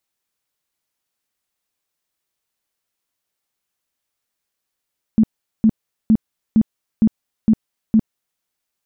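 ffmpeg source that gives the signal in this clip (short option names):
-f lavfi -i "aevalsrc='0.376*sin(2*PI*220*mod(t,0.46))*lt(mod(t,0.46),12/220)':d=3.22:s=44100"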